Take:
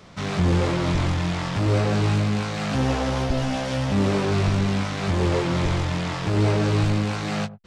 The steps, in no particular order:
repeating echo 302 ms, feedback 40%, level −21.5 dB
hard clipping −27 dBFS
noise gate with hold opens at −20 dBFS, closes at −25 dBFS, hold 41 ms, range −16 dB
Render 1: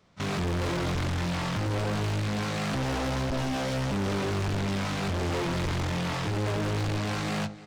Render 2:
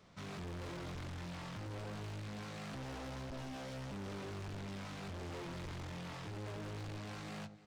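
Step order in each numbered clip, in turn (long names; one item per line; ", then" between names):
noise gate with hold, then repeating echo, then hard clipping
repeating echo, then hard clipping, then noise gate with hold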